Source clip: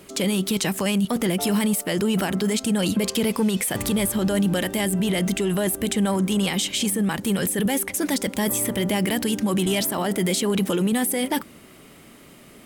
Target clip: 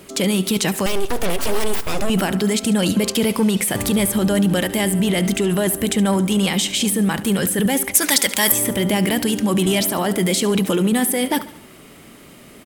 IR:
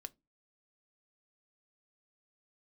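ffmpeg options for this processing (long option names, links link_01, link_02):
-filter_complex "[0:a]asettb=1/sr,asplit=3[link_01][link_02][link_03];[link_01]atrim=end=0.864[link_04];[link_02]atrim=start=0.86:end=2.1,asetpts=PTS-STARTPTS,afade=type=in:duration=0.004:curve=qsin,afade=type=out:start_time=1.236:duration=0.004:curve=qsin,aeval=exprs='abs(val(0))':channel_layout=same[link_05];[link_03]atrim=start=2.096[link_06];[link_04][link_05]acrossfade=duration=0.004:curve1=hsin:curve2=qsin[link_07];[link_07][link_06]acrossfade=duration=0.004:curve1=qsin:curve2=hsin,asettb=1/sr,asplit=3[link_08][link_09][link_10];[link_08]atrim=end=7.954[link_11];[link_09]atrim=start=7.95:end=8.52,asetpts=PTS-STARTPTS,afade=type=in:duration=0.004:curve=qsin,afade=type=out:start_time=0.566:duration=0.004:curve=qsin,tiltshelf=frequency=660:gain=-9.5[link_12];[link_10]atrim=start=8.516[link_13];[link_11][link_12]acrossfade=duration=0.004:curve1=hsin:curve2=qsin[link_14];[link_14][link_13]acrossfade=duration=0.004:curve1=qsin:curve2=hsin,aecho=1:1:71|142|213|284:0.158|0.0792|0.0396|0.0198,volume=4dB"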